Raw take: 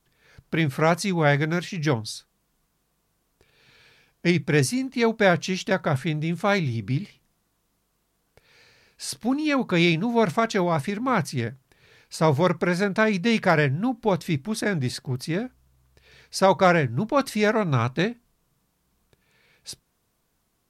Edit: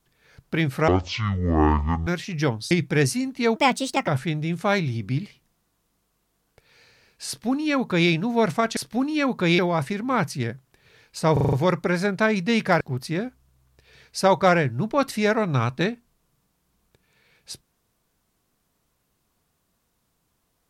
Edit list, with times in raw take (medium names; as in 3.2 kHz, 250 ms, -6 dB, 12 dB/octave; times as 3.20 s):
0.88–1.51 s: speed 53%
2.15–4.28 s: delete
5.13–5.87 s: speed 143%
9.07–9.89 s: copy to 10.56 s
12.30 s: stutter 0.04 s, 6 plays
13.58–14.99 s: delete